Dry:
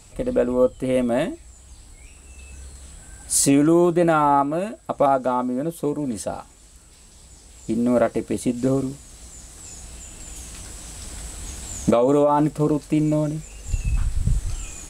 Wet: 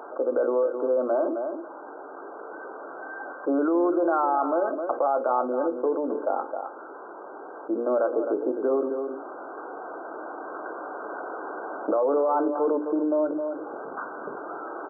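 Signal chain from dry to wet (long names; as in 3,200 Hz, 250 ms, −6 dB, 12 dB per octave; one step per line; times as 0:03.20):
Butterworth high-pass 340 Hz 36 dB per octave
mains-hum notches 60/120/180/240/300/360/420/480/540 Hz
brickwall limiter −17 dBFS, peak gain reduction 9.5 dB
linear-phase brick-wall low-pass 1,600 Hz
single-tap delay 263 ms −12.5 dB
on a send at −18 dB: convolution reverb, pre-delay 3 ms
on the sum: envelope flattener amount 50%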